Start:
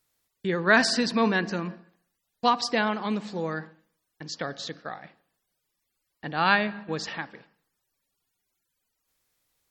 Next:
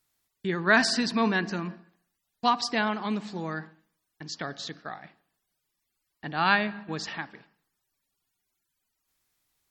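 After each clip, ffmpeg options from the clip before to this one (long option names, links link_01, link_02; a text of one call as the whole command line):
ffmpeg -i in.wav -af "equalizer=frequency=510:width_type=o:width=0.2:gain=-11.5,volume=-1dB" out.wav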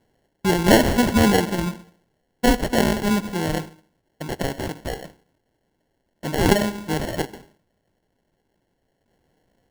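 ffmpeg -i in.wav -filter_complex "[0:a]asplit=2[link_01][link_02];[link_02]alimiter=limit=-17dB:level=0:latency=1:release=402,volume=1dB[link_03];[link_01][link_03]amix=inputs=2:normalize=0,acrusher=samples=36:mix=1:aa=0.000001,volume=3dB" out.wav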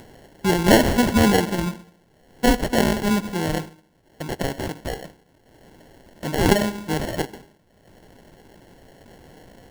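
ffmpeg -i in.wav -af "acompressor=mode=upward:threshold=-30dB:ratio=2.5" out.wav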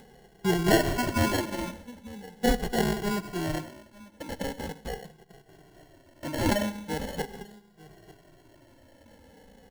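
ffmpeg -i in.wav -filter_complex "[0:a]aecho=1:1:894:0.0891,asplit=2[link_01][link_02];[link_02]adelay=2,afreqshift=-0.41[link_03];[link_01][link_03]amix=inputs=2:normalize=1,volume=-4dB" out.wav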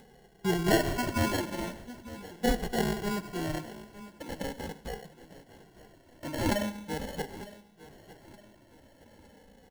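ffmpeg -i in.wav -af "aecho=1:1:911|1822|2733|3644:0.119|0.0523|0.023|0.0101,volume=-3dB" out.wav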